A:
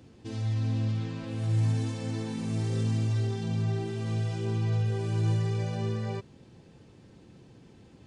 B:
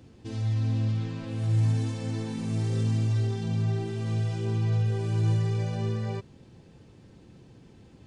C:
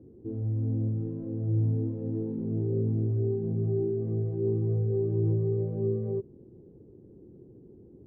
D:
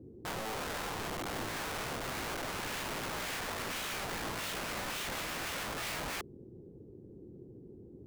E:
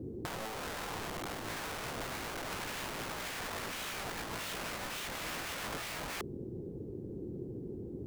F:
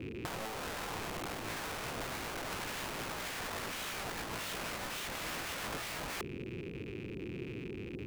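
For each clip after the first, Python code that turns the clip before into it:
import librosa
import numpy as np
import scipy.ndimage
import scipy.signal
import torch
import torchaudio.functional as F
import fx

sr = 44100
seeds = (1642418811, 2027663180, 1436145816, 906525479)

y1 = fx.low_shelf(x, sr, hz=89.0, db=5.5)
y2 = fx.lowpass_res(y1, sr, hz=390.0, q=4.0)
y2 = F.gain(torch.from_numpy(y2), -3.5).numpy()
y3 = (np.mod(10.0 ** (33.5 / 20.0) * y2 + 1.0, 2.0) - 1.0) / 10.0 ** (33.5 / 20.0)
y4 = fx.over_compress(y3, sr, threshold_db=-42.0, ratio=-0.5)
y4 = F.gain(torch.from_numpy(y4), 4.0).numpy()
y5 = fx.rattle_buzz(y4, sr, strikes_db=-46.0, level_db=-39.0)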